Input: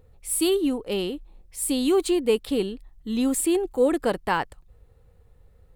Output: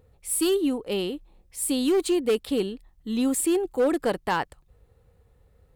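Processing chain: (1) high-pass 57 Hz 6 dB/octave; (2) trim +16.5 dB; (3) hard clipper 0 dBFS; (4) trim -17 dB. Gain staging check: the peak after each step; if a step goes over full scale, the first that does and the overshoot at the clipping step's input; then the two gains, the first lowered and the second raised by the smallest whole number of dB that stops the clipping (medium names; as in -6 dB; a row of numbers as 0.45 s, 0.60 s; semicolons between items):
-10.0 dBFS, +6.5 dBFS, 0.0 dBFS, -17.0 dBFS; step 2, 6.5 dB; step 2 +9.5 dB, step 4 -10 dB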